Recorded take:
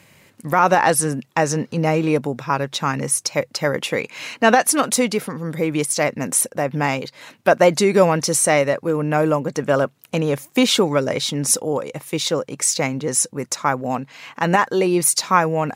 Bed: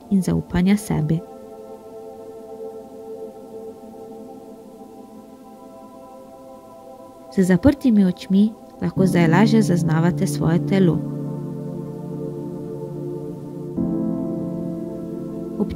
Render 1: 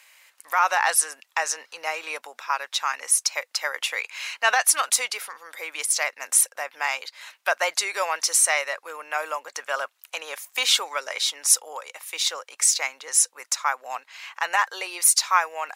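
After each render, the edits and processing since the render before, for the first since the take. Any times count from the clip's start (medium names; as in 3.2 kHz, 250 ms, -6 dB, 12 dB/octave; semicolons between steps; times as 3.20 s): Bessel high-pass 1.2 kHz, order 4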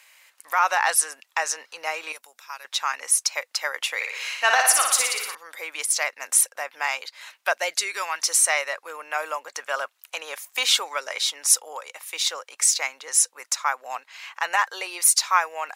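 2.12–2.65 s: pre-emphasis filter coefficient 0.8; 3.95–5.35 s: flutter echo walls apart 10 m, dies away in 0.86 s; 7.52–8.19 s: peaking EQ 1.4 kHz -> 470 Hz -12.5 dB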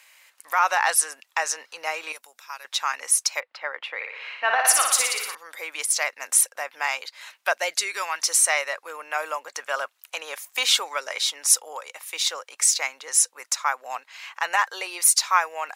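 3.40–4.65 s: distance through air 400 m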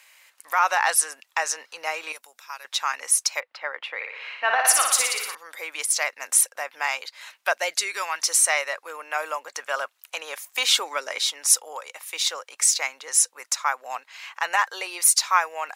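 8.49–9.16 s: brick-wall FIR high-pass 220 Hz; 10.69–11.31 s: peaking EQ 300 Hz +7 dB 0.84 oct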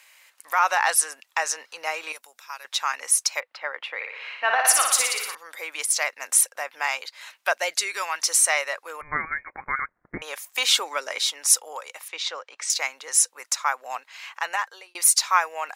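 9.01–10.22 s: frequency inversion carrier 2.7 kHz; 12.08–12.70 s: distance through air 140 m; 14.30–14.95 s: fade out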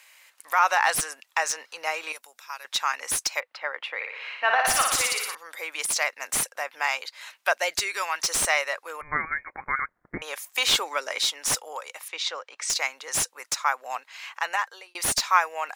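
slew-rate limiter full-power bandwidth 570 Hz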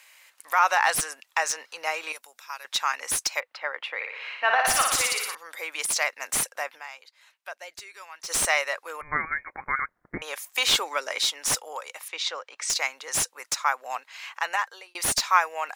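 6.75–8.31 s: dip -15.5 dB, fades 0.30 s exponential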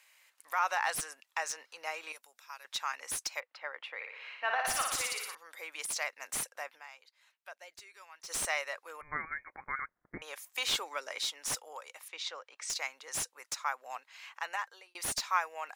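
trim -10 dB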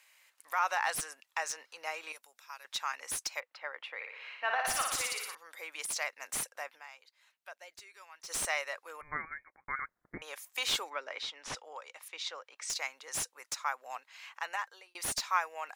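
9.13–9.68 s: fade out; 10.89–12.01 s: low-pass 2.6 kHz -> 6.3 kHz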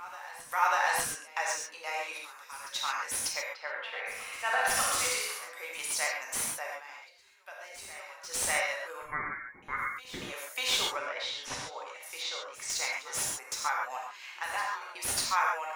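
reverse echo 594 ms -17 dB; gated-style reverb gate 160 ms flat, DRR -2.5 dB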